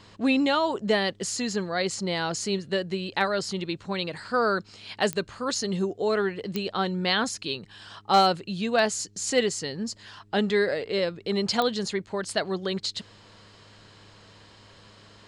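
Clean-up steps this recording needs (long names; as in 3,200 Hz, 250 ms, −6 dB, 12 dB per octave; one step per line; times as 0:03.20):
clipped peaks rebuilt −10.5 dBFS
click removal
hum removal 102.8 Hz, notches 4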